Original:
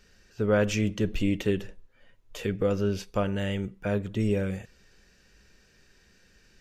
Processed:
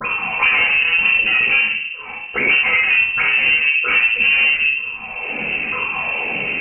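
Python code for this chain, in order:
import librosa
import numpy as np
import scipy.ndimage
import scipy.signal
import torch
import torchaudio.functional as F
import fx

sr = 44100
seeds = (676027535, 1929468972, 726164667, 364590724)

p1 = fx.pitch_ramps(x, sr, semitones=10.0, every_ms=952)
p2 = scipy.signal.sosfilt(scipy.signal.cheby1(4, 1.0, 170.0, 'highpass', fs=sr, output='sos'), p1)
p3 = fx.low_shelf(p2, sr, hz=270.0, db=10.0)
p4 = fx.level_steps(p3, sr, step_db=13)
p5 = p3 + (p4 * 10.0 ** (-1.0 / 20.0))
p6 = fx.dispersion(p5, sr, late='lows', ms=50.0, hz=940.0)
p7 = 10.0 ** (-26.5 / 20.0) * np.tanh(p6 / 10.0 ** (-26.5 / 20.0))
p8 = p7 + fx.room_early_taps(p7, sr, ms=(43, 70), db=(-10.5, -6.0), dry=0)
p9 = fx.rev_fdn(p8, sr, rt60_s=0.5, lf_ratio=1.55, hf_ratio=0.7, size_ms=44.0, drr_db=-1.5)
p10 = fx.freq_invert(p9, sr, carrier_hz=2900)
p11 = fx.band_squash(p10, sr, depth_pct=100)
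y = p11 * 10.0 ** (8.0 / 20.0)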